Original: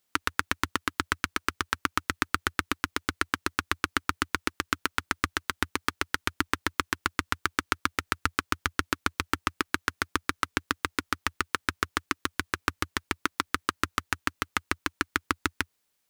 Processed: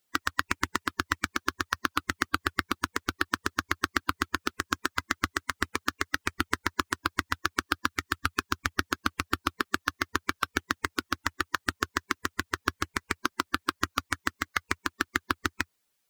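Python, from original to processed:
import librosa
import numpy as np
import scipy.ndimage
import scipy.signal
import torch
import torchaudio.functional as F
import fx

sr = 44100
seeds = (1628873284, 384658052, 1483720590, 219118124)

y = fx.spec_quant(x, sr, step_db=15)
y = fx.peak_eq(y, sr, hz=590.0, db=-13.0, octaves=0.42, at=(7.86, 8.58))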